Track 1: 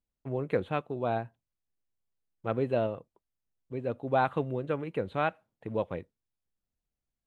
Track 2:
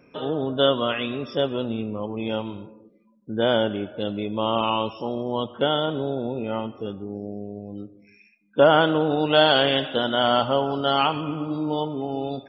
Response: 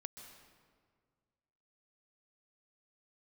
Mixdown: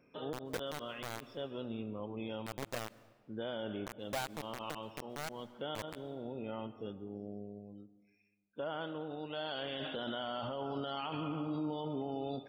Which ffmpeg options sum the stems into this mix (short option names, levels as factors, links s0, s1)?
-filter_complex "[0:a]acrusher=bits=3:mix=0:aa=0.000001,volume=0.708,asplit=3[s0][s1][s2];[s1]volume=0.1[s3];[1:a]volume=0.891,afade=t=out:st=7.38:d=0.52:silence=0.375837,afade=t=in:st=9.39:d=0.33:silence=0.237137,asplit=2[s4][s5];[s5]volume=0.335[s6];[s2]apad=whole_len=550553[s7];[s4][s7]sidechaincompress=threshold=0.0178:ratio=8:attack=16:release=728[s8];[2:a]atrim=start_sample=2205[s9];[s3][s6]amix=inputs=2:normalize=0[s10];[s10][s9]afir=irnorm=-1:irlink=0[s11];[s0][s8][s11]amix=inputs=3:normalize=0,alimiter=level_in=2:limit=0.0631:level=0:latency=1:release=24,volume=0.501"